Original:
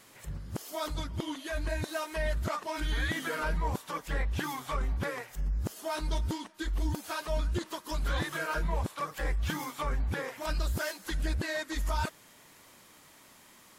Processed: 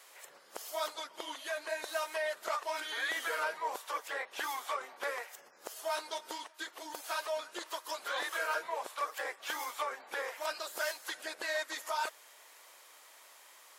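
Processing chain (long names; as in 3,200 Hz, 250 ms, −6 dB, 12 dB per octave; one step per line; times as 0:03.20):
high-pass filter 490 Hz 24 dB per octave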